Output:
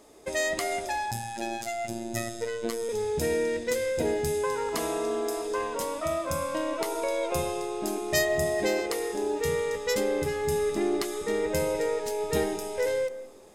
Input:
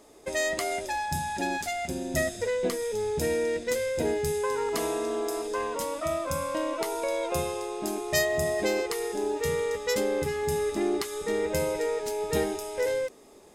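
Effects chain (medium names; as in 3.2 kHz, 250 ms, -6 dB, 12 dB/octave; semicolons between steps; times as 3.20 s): 1.11–2.89 s: robot voice 115 Hz; on a send: distance through air 420 m + reverberation RT60 0.75 s, pre-delay 85 ms, DRR 14.5 dB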